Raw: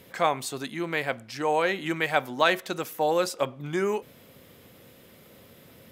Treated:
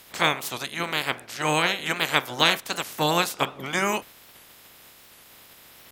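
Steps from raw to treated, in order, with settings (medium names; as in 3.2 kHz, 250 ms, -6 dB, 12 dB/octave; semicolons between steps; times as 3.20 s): spectral peaks clipped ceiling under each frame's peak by 22 dB; warped record 78 rpm, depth 160 cents; trim +2 dB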